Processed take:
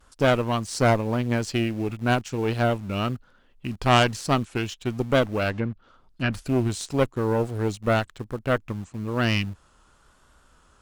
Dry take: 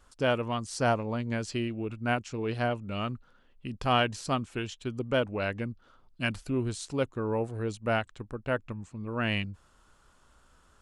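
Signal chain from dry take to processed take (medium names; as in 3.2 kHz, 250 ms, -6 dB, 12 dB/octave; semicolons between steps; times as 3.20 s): vibrato 1 Hz 44 cents; in parallel at -11.5 dB: bit crusher 7-bit; on the sum: Chebyshev shaper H 4 -13 dB, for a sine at -8.5 dBFS; 5.50–6.33 s: low-pass that closes with the level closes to 2.2 kHz, closed at -29 dBFS; trim +4 dB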